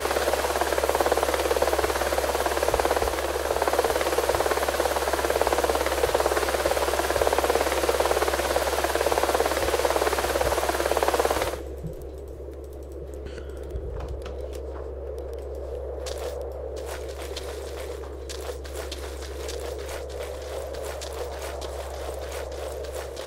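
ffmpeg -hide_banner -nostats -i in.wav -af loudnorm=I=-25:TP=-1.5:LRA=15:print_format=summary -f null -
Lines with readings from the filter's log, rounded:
Input Integrated:    -26.9 LUFS
Input True Peak:      -4.7 dBTP
Input LRA:            10.7 LU
Input Threshold:     -37.1 LUFS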